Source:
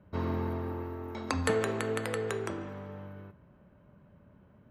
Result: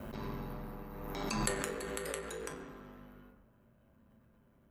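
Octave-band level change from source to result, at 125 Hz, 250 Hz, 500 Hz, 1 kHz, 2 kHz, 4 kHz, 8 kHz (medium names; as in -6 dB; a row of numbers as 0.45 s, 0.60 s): -9.0 dB, -6.5 dB, -8.5 dB, -5.0 dB, -5.0 dB, -2.0 dB, +3.0 dB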